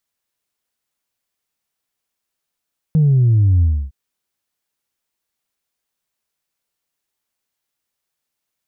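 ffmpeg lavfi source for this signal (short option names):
-f lavfi -i "aevalsrc='0.316*clip((0.96-t)/0.29,0,1)*tanh(1*sin(2*PI*160*0.96/log(65/160)*(exp(log(65/160)*t/0.96)-1)))/tanh(1)':d=0.96:s=44100"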